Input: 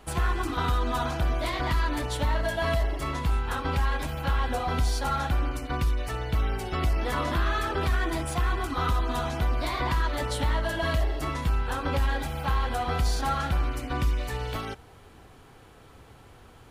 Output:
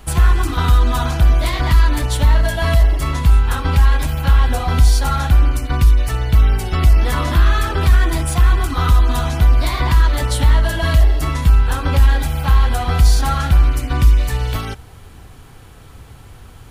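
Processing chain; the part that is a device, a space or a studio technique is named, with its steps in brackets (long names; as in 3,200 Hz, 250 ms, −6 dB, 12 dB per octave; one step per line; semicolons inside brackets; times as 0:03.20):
smiley-face EQ (low-shelf EQ 180 Hz +8.5 dB; parametric band 430 Hz −4 dB 2.2 octaves; high-shelf EQ 6,400 Hz +7 dB)
level +7.5 dB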